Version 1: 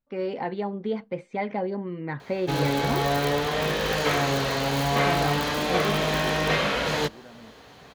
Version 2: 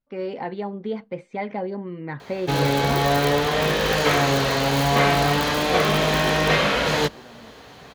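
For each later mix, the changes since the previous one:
background +4.5 dB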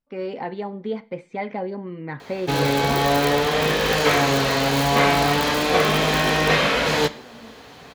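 reverb: on, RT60 0.50 s

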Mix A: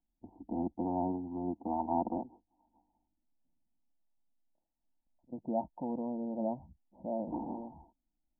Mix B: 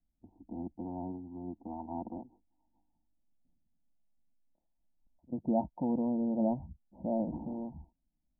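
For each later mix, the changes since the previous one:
first voice -11.0 dB; master: add bass shelf 290 Hz +10.5 dB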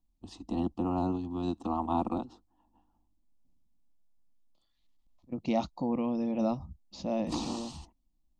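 first voice +8.5 dB; master: remove rippled Chebyshev low-pass 940 Hz, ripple 3 dB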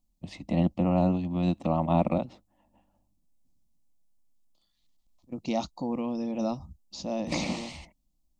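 first voice: remove static phaser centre 580 Hz, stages 6; second voice: add tone controls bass -1 dB, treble +10 dB

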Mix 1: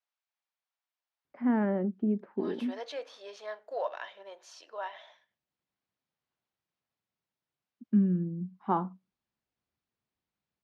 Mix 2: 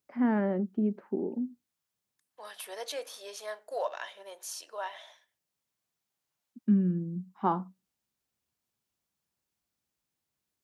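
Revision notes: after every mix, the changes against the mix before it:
first voice: entry -1.25 s; master: remove distance through air 190 m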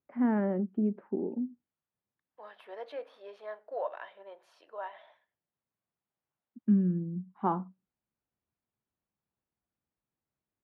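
second voice: add treble shelf 2.5 kHz -6.5 dB; master: add distance through air 450 m

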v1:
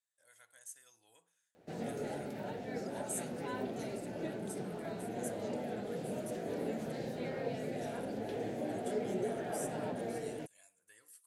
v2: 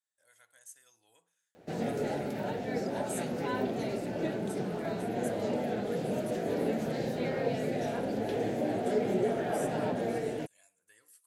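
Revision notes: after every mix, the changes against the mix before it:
background +7.0 dB; master: add peaking EQ 9.2 kHz -3 dB 0.3 oct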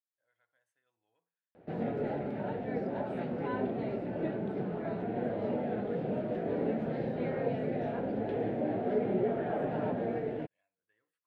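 speech -9.5 dB; master: add distance through air 490 m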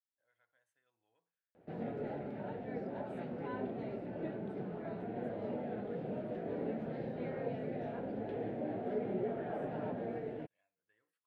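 background -6.5 dB

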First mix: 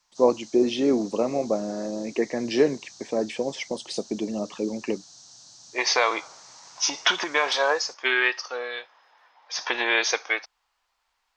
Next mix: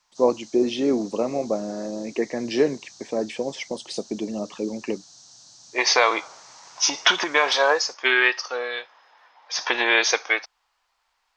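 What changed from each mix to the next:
second voice +3.5 dB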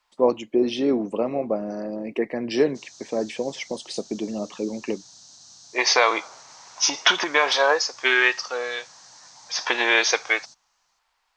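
background: entry +2.60 s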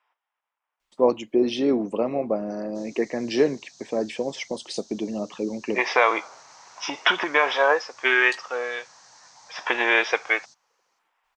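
first voice: entry +0.80 s; second voice: add Savitzky-Golay filter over 25 samples; background -4.5 dB

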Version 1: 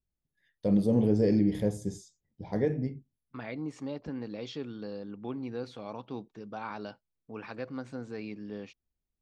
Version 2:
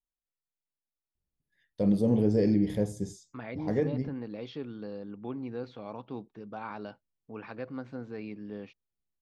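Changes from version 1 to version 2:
first voice: entry +1.15 s; second voice: add distance through air 180 m

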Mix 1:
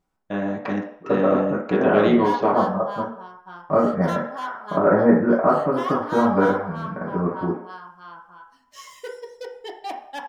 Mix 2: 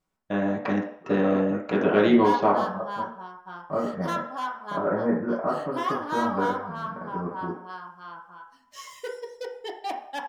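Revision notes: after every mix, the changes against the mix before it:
second voice -9.0 dB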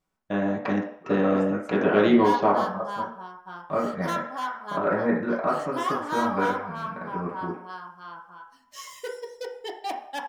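second voice: remove Gaussian low-pass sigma 5.2 samples; background: add treble shelf 6.2 kHz +5.5 dB

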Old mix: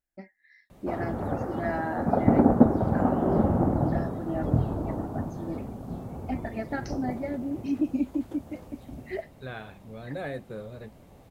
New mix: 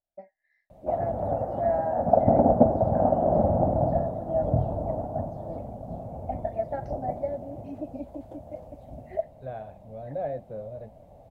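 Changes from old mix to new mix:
first voice: add band-pass filter 1 kHz, Q 0.57; second voice: add distance through air 250 m; master: add FFT filter 110 Hz 0 dB, 400 Hz -7 dB, 630 Hz +11 dB, 1.2 kHz -11 dB

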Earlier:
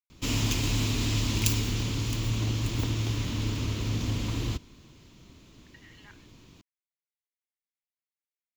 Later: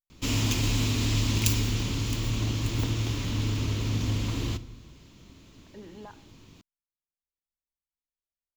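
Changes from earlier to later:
speech: remove resonant high-pass 2.1 kHz, resonance Q 4.8; reverb: on, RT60 0.80 s

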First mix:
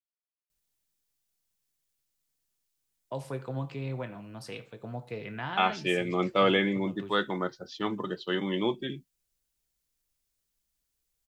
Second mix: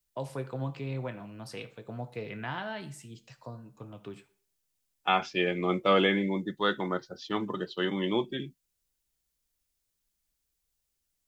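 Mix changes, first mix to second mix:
first voice: entry -2.95 s; second voice: entry -0.50 s

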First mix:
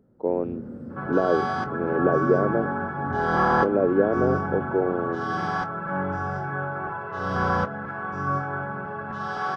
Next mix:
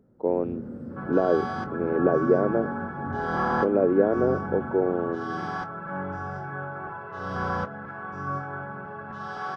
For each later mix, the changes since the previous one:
second sound -5.0 dB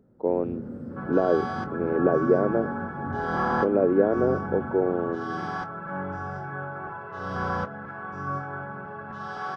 reverb: on, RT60 0.70 s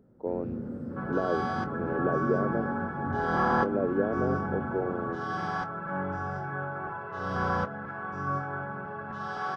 speech -7.5 dB

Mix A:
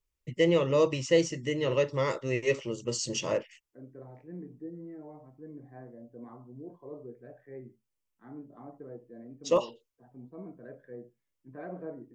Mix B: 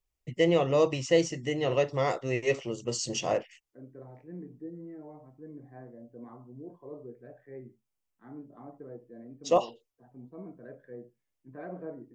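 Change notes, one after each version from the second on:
first voice: remove Butterworth band-stop 730 Hz, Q 4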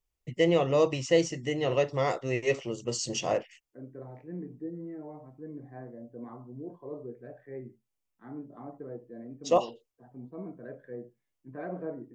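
second voice +3.5 dB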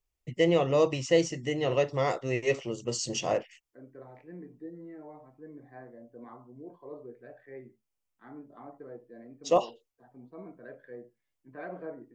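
second voice: add tilt EQ +3 dB/octave

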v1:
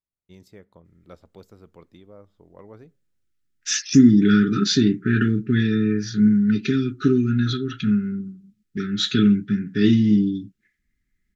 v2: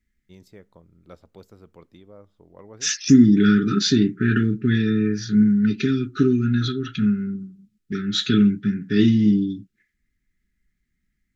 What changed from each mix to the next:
second voice: entry -0.85 s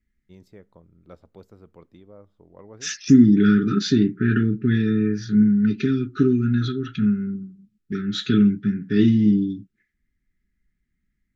master: add treble shelf 2.5 kHz -8 dB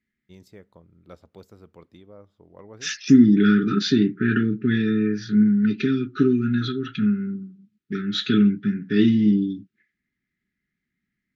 second voice: add band-pass 140–3800 Hz; master: add treble shelf 2.5 kHz +8 dB

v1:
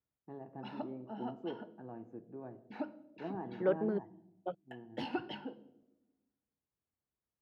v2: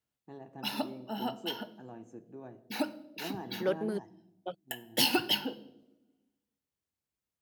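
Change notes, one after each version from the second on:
background +7.0 dB; master: remove low-pass 1.5 kHz 12 dB/octave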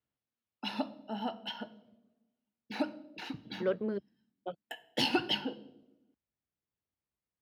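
first voice: muted; background: add peaking EQ 9.1 kHz +14.5 dB 1.1 oct; master: add distance through air 260 m

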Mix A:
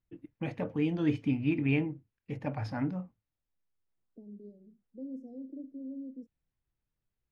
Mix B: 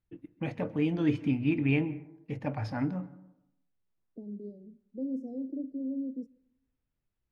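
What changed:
second voice +6.5 dB; reverb: on, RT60 0.85 s

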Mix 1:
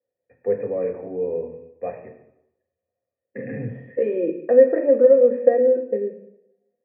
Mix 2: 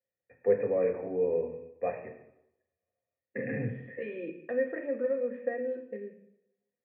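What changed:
second voice: add peaking EQ 530 Hz -14.5 dB 2.5 oct; master: add tilt shelf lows -4 dB, about 1.2 kHz

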